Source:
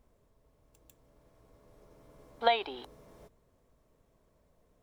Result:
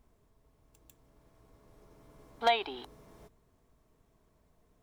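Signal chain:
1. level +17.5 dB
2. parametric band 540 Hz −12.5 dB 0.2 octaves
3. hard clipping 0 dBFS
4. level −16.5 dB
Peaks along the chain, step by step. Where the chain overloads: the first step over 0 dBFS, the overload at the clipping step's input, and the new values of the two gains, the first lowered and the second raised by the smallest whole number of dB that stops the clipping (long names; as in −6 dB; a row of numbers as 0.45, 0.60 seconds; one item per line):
+7.0, +6.5, 0.0, −16.5 dBFS
step 1, 6.5 dB
step 1 +10.5 dB, step 4 −9.5 dB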